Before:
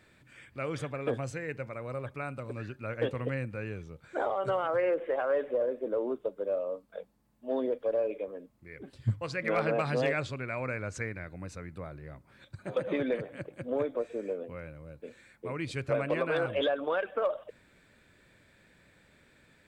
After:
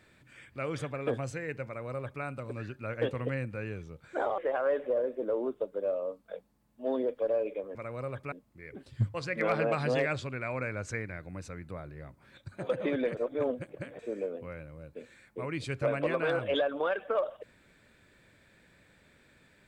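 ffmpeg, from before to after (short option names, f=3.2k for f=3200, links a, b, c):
-filter_complex "[0:a]asplit=6[a][b][c][d][e][f];[a]atrim=end=4.382[g];[b]atrim=start=5.018:end=8.392[h];[c]atrim=start=1.658:end=2.232[i];[d]atrim=start=8.388:end=13.242[j];[e]atrim=start=13.238:end=14.062,asetpts=PTS-STARTPTS,areverse[k];[f]atrim=start=14.058[l];[g][h]acrossfade=d=0.004:c1=hsin:c2=hsin[m];[m][i]acrossfade=d=0.004:c1=hsin:c2=hsin[n];[n][j]acrossfade=d=0.004:c1=hsin:c2=hsin[o];[o][k]acrossfade=d=0.004:c1=hsin:c2=hsin[p];[p][l]acrossfade=d=0.004:c1=hsin:c2=hsin"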